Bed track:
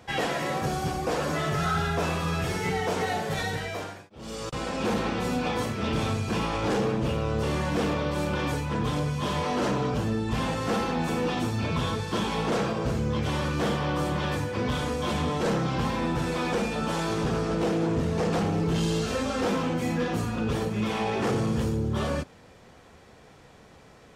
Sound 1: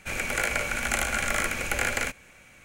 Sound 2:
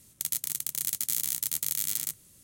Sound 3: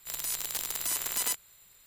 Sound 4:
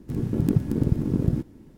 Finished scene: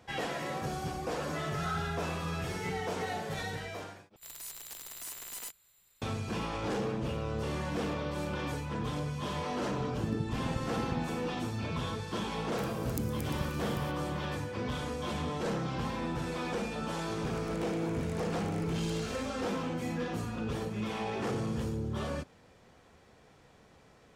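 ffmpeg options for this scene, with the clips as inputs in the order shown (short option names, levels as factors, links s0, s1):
-filter_complex "[4:a]asplit=2[s0][s1];[0:a]volume=0.422[s2];[3:a]asoftclip=type=tanh:threshold=0.0596[s3];[s0]lowpass=f=2800:p=1[s4];[s1]aexciter=amount=11.2:drive=3.1:freq=3800[s5];[1:a]acompressor=threshold=0.0282:ratio=6:attack=3.2:release=140:knee=1:detection=peak[s6];[s2]asplit=2[s7][s8];[s7]atrim=end=4.164[s9];[s3]atrim=end=1.86,asetpts=PTS-STARTPTS,volume=0.376[s10];[s8]atrim=start=6.016[s11];[s4]atrim=end=1.77,asetpts=PTS-STARTPTS,volume=0.188,afade=t=in:d=0.004:c=hsin,afade=t=out:st=1.766:d=0.004:c=hsin,adelay=9640[s12];[s5]atrim=end=1.77,asetpts=PTS-STARTPTS,volume=0.141,afade=t=in:d=0.004:c=hsin,afade=t=out:st=1.766:d=0.004:c=hsin,adelay=12490[s13];[s6]atrim=end=2.64,asetpts=PTS-STARTPTS,volume=0.15,afade=t=in:d=0.004:c=hsin,afade=t=out:st=2.636:d=0.004:c=hsin,adelay=17180[s14];[s9][s10]acrossfade=d=0.004:c1=hsin:c2=hsin[s15];[s15][s11]acrossfade=d=0.004:c1=hsin:c2=hsin[s16];[s16][s12][s13][s14]amix=inputs=4:normalize=0"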